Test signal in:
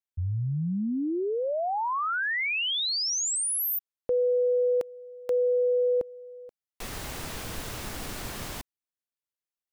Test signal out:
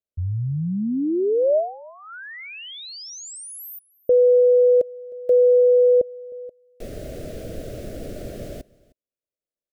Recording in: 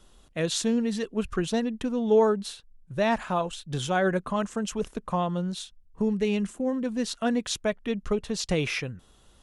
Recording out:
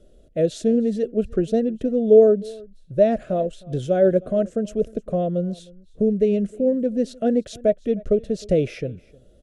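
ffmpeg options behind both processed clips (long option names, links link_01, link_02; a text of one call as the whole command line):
ffmpeg -i in.wav -filter_complex "[0:a]firequalizer=gain_entry='entry(180,0);entry(620,8);entry(900,-29);entry(1400,-13)':delay=0.05:min_phase=1,asplit=2[link_01][link_02];[link_02]aecho=0:1:309:0.0668[link_03];[link_01][link_03]amix=inputs=2:normalize=0,volume=4dB" out.wav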